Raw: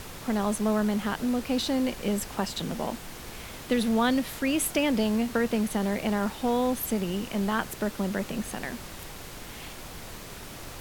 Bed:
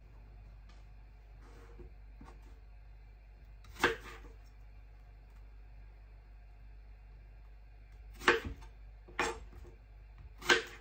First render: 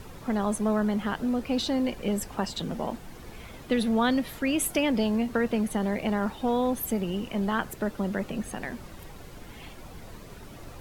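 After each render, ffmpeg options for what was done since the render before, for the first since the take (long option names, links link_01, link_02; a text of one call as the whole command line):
ffmpeg -i in.wav -af "afftdn=noise_reduction=10:noise_floor=-42" out.wav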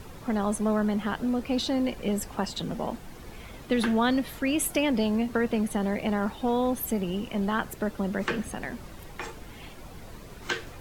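ffmpeg -i in.wav -i bed.wav -filter_complex "[1:a]volume=-3.5dB[link_01];[0:a][link_01]amix=inputs=2:normalize=0" out.wav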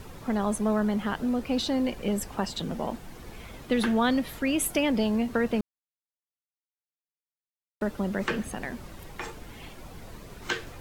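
ffmpeg -i in.wav -filter_complex "[0:a]asplit=3[link_01][link_02][link_03];[link_01]atrim=end=5.61,asetpts=PTS-STARTPTS,afade=type=out:start_time=5.606:duration=0.004:curve=hsin[link_04];[link_02]atrim=start=5.61:end=7.81,asetpts=PTS-STARTPTS,volume=0[link_05];[link_03]atrim=start=7.81,asetpts=PTS-STARTPTS,afade=type=in:duration=0.004:curve=hsin[link_06];[link_04][link_05][link_06]concat=n=3:v=0:a=1" out.wav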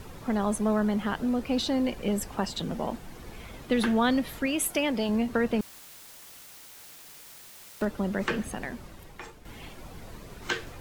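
ffmpeg -i in.wav -filter_complex "[0:a]asettb=1/sr,asplit=3[link_01][link_02][link_03];[link_01]atrim=end=4.464[link_04];[link_02]atrim=start=4.46:end=5.09,asetpts=PTS-STARTPTS,afade=type=in:duration=0.004:curve=qsin,afade=type=out:start_time=0.626:duration=0.004:curve=qsin,lowshelf=frequency=260:gain=-7.5[link_05];[link_03]atrim=start=5.086[link_06];[link_04][link_05]acrossfade=duration=0.004:curve1=hsin:curve2=qsin[link_07];[link_07][link_06]acrossfade=duration=0.004:curve1=qsin:curve2=hsin,asettb=1/sr,asplit=3[link_08][link_09][link_10];[link_08]atrim=end=5.594[link_11];[link_09]atrim=start=5.59:end=7.85,asetpts=PTS-STARTPTS,afade=type=in:duration=0.004:curve=qsin,afade=type=out:start_time=2.256:duration=0.004:curve=qsin,aeval=exprs='val(0)+0.5*0.015*sgn(val(0))':channel_layout=same[link_12];[link_10]atrim=start=7.846[link_13];[link_11][link_12]acrossfade=duration=0.004:curve1=hsin:curve2=qsin[link_14];[link_14][link_13]acrossfade=duration=0.004:curve1=qsin:curve2=hsin,asplit=2[link_15][link_16];[link_15]atrim=end=9.45,asetpts=PTS-STARTPTS,afade=type=out:start_time=8.54:duration=0.91:silence=0.334965[link_17];[link_16]atrim=start=9.45,asetpts=PTS-STARTPTS,afade=type=in:duration=0.004:curve=hsin:silence=0.334965[link_18];[link_17][link_18]concat=n=2:v=0:a=1" out.wav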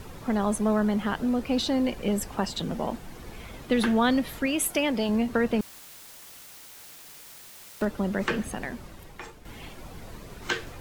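ffmpeg -i in.wav -af "volume=1.5dB" out.wav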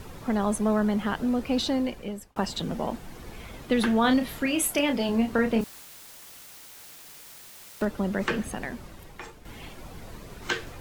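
ffmpeg -i in.wav -filter_complex "[0:a]asettb=1/sr,asplit=3[link_01][link_02][link_03];[link_01]atrim=end=4.014[link_04];[link_02]atrim=start=4.01:end=5.83,asetpts=PTS-STARTPTS,afade=type=in:duration=0.004:curve=qsin,afade=type=out:start_time=1.816:duration=0.004:curve=qsin,asplit=2[link_05][link_06];[link_06]adelay=31,volume=-6.5dB[link_07];[link_05][link_07]amix=inputs=2:normalize=0,atrim=end_sample=80262[link_08];[link_03]atrim=start=5.826[link_09];[link_04][link_08]acrossfade=duration=0.004:curve1=hsin:curve2=qsin[link_10];[link_10][link_09]acrossfade=duration=0.004:curve1=qsin:curve2=hsin,asplit=2[link_11][link_12];[link_11]atrim=end=2.36,asetpts=PTS-STARTPTS,afade=type=out:start_time=1.69:duration=0.67[link_13];[link_12]atrim=start=2.36,asetpts=PTS-STARTPTS,afade=type=in:duration=0.004:curve=hsin[link_14];[link_13][link_14]concat=n=2:v=0:a=1" out.wav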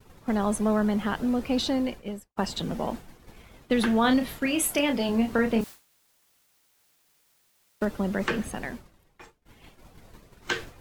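ffmpeg -i in.wav -af "agate=range=-33dB:threshold=-33dB:ratio=3:detection=peak" out.wav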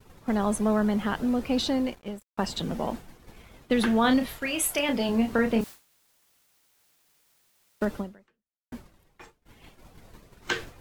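ffmpeg -i in.wav -filter_complex "[0:a]asettb=1/sr,asplit=3[link_01][link_02][link_03];[link_01]atrim=end=1.864[link_04];[link_02]atrim=start=1.86:end=2.44,asetpts=PTS-STARTPTS,afade=type=in:duration=0.004:curve=qsin,afade=type=out:start_time=0.576:duration=0.004:curve=qsin,aeval=exprs='sgn(val(0))*max(abs(val(0))-0.00376,0)':channel_layout=same[link_05];[link_03]atrim=start=2.436[link_06];[link_04][link_05]acrossfade=duration=0.004:curve1=hsin:curve2=qsin[link_07];[link_07][link_06]acrossfade=duration=0.004:curve1=qsin:curve2=hsin,asettb=1/sr,asplit=3[link_08][link_09][link_10];[link_08]atrim=end=4.264[link_11];[link_09]atrim=start=4.26:end=4.89,asetpts=PTS-STARTPTS,afade=type=in:duration=0.004:curve=qsin,afade=type=out:start_time=0.626:duration=0.004:curve=qsin,equalizer=frequency=220:width=0.99:gain=-9.5[link_12];[link_10]atrim=start=4.886[link_13];[link_11][link_12]acrossfade=duration=0.004:curve1=hsin:curve2=qsin[link_14];[link_14][link_13]acrossfade=duration=0.004:curve1=qsin:curve2=hsin,asplit=2[link_15][link_16];[link_15]atrim=end=8.72,asetpts=PTS-STARTPTS,afade=type=out:start_time=7.98:duration=0.74:curve=exp[link_17];[link_16]atrim=start=8.72,asetpts=PTS-STARTPTS,afade=type=in:duration=0.004:curve=hsin[link_18];[link_17][link_18]concat=n=2:v=0:a=1" out.wav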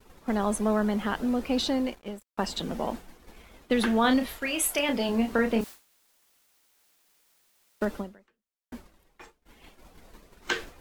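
ffmpeg -i in.wav -af "equalizer=frequency=120:width=2.2:gain=-13.5" out.wav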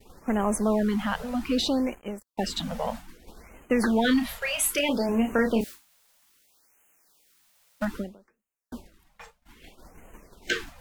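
ffmpeg -i in.wav -filter_complex "[0:a]asplit=2[link_01][link_02];[link_02]asoftclip=type=tanh:threshold=-27dB,volume=-8dB[link_03];[link_01][link_03]amix=inputs=2:normalize=0,afftfilt=real='re*(1-between(b*sr/1024,300*pow(4500/300,0.5+0.5*sin(2*PI*0.62*pts/sr))/1.41,300*pow(4500/300,0.5+0.5*sin(2*PI*0.62*pts/sr))*1.41))':imag='im*(1-between(b*sr/1024,300*pow(4500/300,0.5+0.5*sin(2*PI*0.62*pts/sr))/1.41,300*pow(4500/300,0.5+0.5*sin(2*PI*0.62*pts/sr))*1.41))':win_size=1024:overlap=0.75" out.wav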